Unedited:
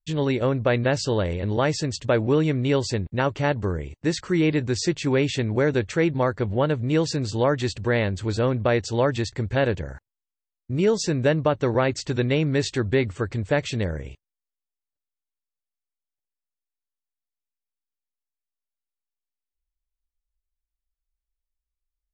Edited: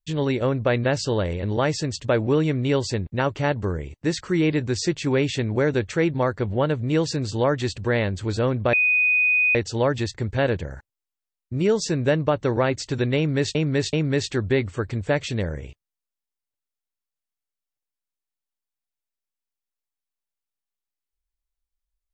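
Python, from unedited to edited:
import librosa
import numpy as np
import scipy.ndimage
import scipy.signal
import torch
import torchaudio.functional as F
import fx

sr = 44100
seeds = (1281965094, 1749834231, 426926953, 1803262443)

y = fx.edit(x, sr, fx.insert_tone(at_s=8.73, length_s=0.82, hz=2490.0, db=-16.0),
    fx.repeat(start_s=12.35, length_s=0.38, count=3), tone=tone)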